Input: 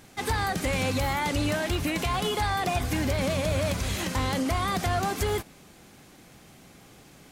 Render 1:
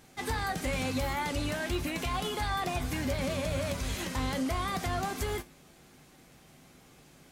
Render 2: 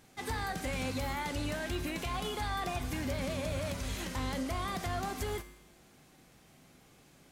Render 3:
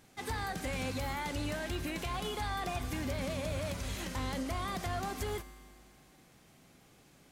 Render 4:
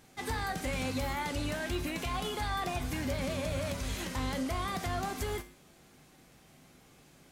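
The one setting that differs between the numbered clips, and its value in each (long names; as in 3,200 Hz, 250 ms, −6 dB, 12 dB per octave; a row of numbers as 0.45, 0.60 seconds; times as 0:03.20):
tuned comb filter, decay: 0.18, 0.91, 2.1, 0.44 seconds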